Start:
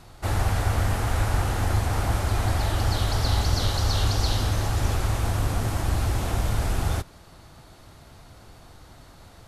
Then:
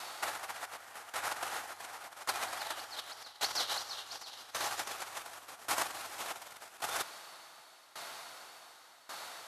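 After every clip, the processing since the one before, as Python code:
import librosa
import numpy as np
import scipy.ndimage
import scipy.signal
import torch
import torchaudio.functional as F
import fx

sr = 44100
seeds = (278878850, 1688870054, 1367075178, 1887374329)

y = fx.over_compress(x, sr, threshold_db=-30.0, ratio=-1.0)
y = scipy.signal.sosfilt(scipy.signal.butter(2, 870.0, 'highpass', fs=sr, output='sos'), y)
y = fx.tremolo_decay(y, sr, direction='decaying', hz=0.88, depth_db=18)
y = y * 10.0 ** (5.0 / 20.0)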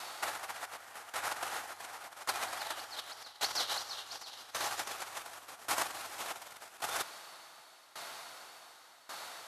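y = x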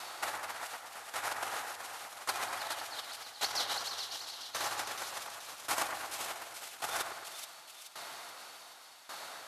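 y = fx.echo_split(x, sr, split_hz=2400.0, low_ms=109, high_ms=428, feedback_pct=52, wet_db=-6.5)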